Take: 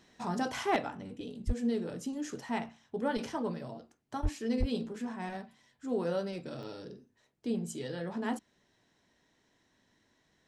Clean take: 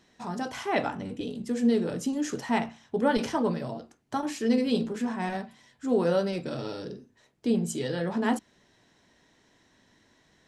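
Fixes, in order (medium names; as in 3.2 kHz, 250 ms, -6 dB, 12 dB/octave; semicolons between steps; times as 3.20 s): clip repair -21.5 dBFS; 1.46–1.58 s: high-pass 140 Hz 24 dB/octave; 4.22–4.34 s: high-pass 140 Hz 24 dB/octave; 4.59–4.71 s: high-pass 140 Hz 24 dB/octave; interpolate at 3.92/6.63 s, 1.7 ms; trim 0 dB, from 0.76 s +8 dB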